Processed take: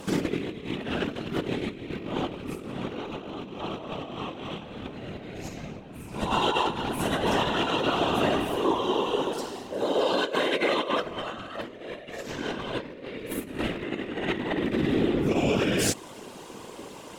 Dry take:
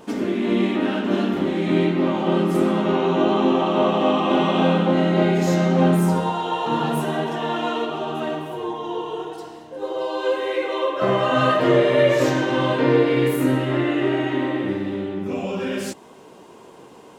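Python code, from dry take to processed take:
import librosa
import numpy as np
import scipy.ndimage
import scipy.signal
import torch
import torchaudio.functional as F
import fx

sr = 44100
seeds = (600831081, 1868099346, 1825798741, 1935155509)

y = fx.rattle_buzz(x, sr, strikes_db=-23.0, level_db=-24.0)
y = scipy.signal.sosfilt(scipy.signal.butter(2, 190.0, 'highpass', fs=sr, output='sos'), y)
y = fx.peak_eq(y, sr, hz=680.0, db=-8.0, octaves=3.0)
y = fx.over_compress(y, sr, threshold_db=-32.0, ratio=-0.5)
y = fx.whisperise(y, sr, seeds[0])
y = y * librosa.db_to_amplitude(3.5)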